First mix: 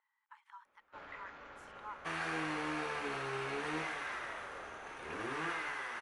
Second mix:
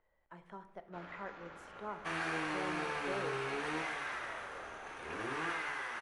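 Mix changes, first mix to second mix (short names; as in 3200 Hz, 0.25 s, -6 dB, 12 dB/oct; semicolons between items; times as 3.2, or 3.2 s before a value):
speech: remove brick-wall FIR high-pass 810 Hz; reverb: on, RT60 0.65 s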